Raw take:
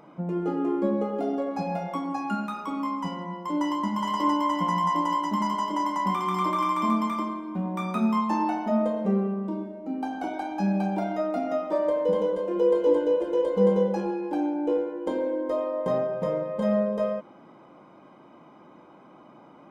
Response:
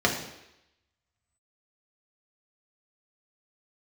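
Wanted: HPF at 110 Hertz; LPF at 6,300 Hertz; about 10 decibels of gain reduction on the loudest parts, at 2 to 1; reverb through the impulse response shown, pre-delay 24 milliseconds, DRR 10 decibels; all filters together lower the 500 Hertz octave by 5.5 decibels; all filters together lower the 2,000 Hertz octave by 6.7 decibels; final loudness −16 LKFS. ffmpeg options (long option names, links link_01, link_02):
-filter_complex "[0:a]highpass=110,lowpass=6300,equalizer=frequency=500:width_type=o:gain=-6,equalizer=frequency=2000:width_type=o:gain=-8,acompressor=threshold=-40dB:ratio=2,asplit=2[link_01][link_02];[1:a]atrim=start_sample=2205,adelay=24[link_03];[link_02][link_03]afir=irnorm=-1:irlink=0,volume=-25dB[link_04];[link_01][link_04]amix=inputs=2:normalize=0,volume=21.5dB"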